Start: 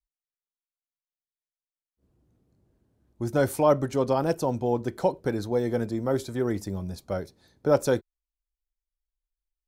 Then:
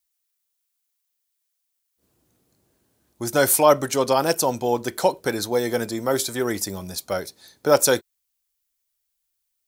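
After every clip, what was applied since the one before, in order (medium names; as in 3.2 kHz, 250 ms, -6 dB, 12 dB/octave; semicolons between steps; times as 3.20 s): tilt EQ +3.5 dB/octave; trim +7.5 dB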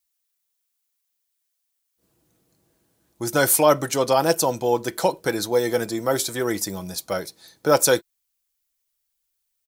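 comb 6.1 ms, depth 32%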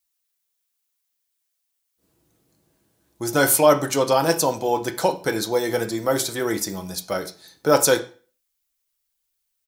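reverberation RT60 0.40 s, pre-delay 4 ms, DRR 6.5 dB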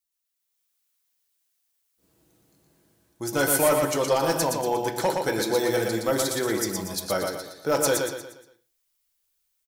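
level rider gain up to 8 dB; hard clipper -8.5 dBFS, distortion -17 dB; feedback delay 118 ms, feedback 41%, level -4 dB; trim -7.5 dB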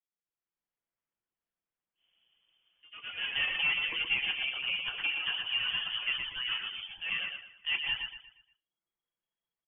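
reverb removal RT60 0.51 s; ever faster or slower copies 187 ms, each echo +2 st, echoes 3, each echo -6 dB; frequency inversion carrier 3.3 kHz; trim -8.5 dB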